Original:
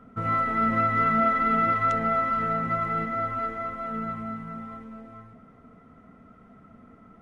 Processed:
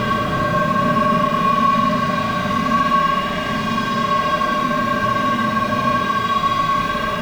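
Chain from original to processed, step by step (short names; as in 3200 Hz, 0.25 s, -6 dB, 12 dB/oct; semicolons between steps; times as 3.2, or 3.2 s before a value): inharmonic rescaling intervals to 89%; low shelf 270 Hz +5.5 dB; sample leveller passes 3; compressor 6:1, threshold -27 dBFS, peak gain reduction 10.5 dB; sample gate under -47.5 dBFS; on a send: swelling echo 0.114 s, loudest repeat 8, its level -11 dB; on the sum: Paulstretch 18×, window 0.05 s, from 1.97; maximiser +13 dB; gain -6 dB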